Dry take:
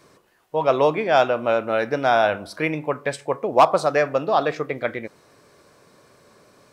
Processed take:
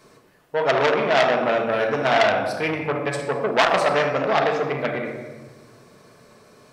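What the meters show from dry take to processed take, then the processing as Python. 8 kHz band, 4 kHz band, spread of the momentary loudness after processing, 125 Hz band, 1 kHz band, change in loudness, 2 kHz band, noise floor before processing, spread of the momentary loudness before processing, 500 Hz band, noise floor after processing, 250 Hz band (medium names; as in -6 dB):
+2.5 dB, +5.5 dB, 9 LU, +1.5 dB, -1.0 dB, 0.0 dB, +3.5 dB, -58 dBFS, 10 LU, -0.5 dB, -54 dBFS, +0.5 dB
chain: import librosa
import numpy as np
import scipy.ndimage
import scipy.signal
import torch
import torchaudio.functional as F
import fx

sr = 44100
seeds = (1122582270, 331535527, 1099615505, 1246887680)

y = fx.room_shoebox(x, sr, seeds[0], volume_m3=1000.0, walls='mixed', distance_m=1.5)
y = fx.transformer_sat(y, sr, knee_hz=2600.0)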